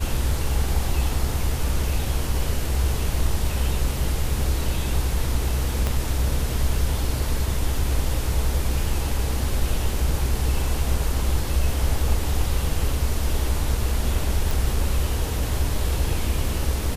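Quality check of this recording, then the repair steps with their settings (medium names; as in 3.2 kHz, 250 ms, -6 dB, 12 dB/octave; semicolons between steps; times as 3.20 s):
5.87 s: pop -10 dBFS
14.51 s: pop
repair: de-click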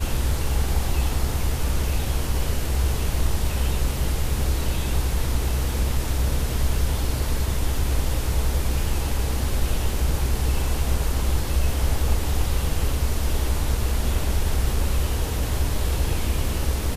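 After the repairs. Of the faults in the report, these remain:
5.87 s: pop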